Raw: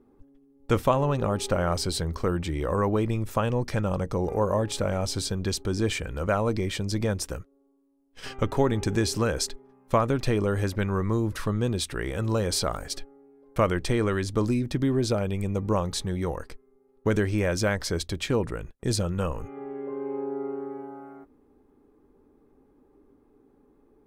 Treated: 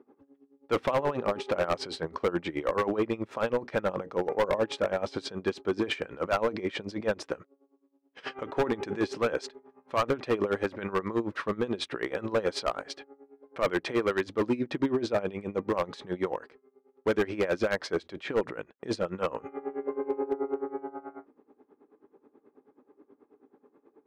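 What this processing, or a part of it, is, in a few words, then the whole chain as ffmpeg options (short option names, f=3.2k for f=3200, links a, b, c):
helicopter radio: -af "highpass=310,lowpass=2.6k,aeval=exprs='val(0)*pow(10,-18*(0.5-0.5*cos(2*PI*9.3*n/s))/20)':c=same,asoftclip=type=hard:threshold=-27.5dB,volume=7.5dB"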